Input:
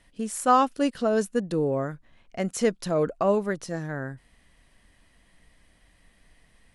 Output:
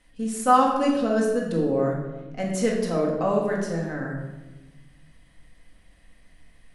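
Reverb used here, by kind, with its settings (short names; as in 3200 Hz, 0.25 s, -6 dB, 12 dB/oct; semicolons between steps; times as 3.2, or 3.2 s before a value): shoebox room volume 640 m³, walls mixed, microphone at 2 m; gain -3.5 dB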